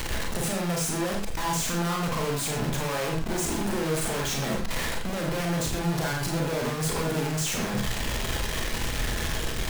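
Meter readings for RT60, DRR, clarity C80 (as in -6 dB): no single decay rate, -1.0 dB, 9.0 dB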